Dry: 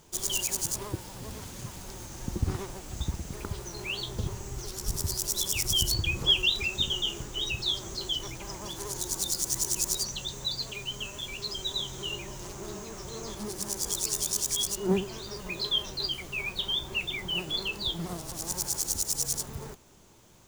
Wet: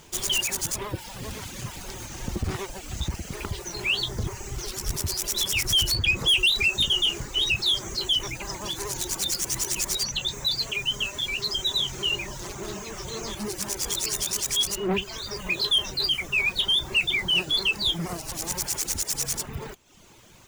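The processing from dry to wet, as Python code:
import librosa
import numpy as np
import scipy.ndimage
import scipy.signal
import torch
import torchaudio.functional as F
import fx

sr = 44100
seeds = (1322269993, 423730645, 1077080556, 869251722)

y = fx.dereverb_blind(x, sr, rt60_s=0.72)
y = 10.0 ** (-27.0 / 20.0) * np.tanh(y / 10.0 ** (-27.0 / 20.0))
y = fx.peak_eq(y, sr, hz=2400.0, db=6.0, octaves=1.5)
y = y * librosa.db_to_amplitude(6.0)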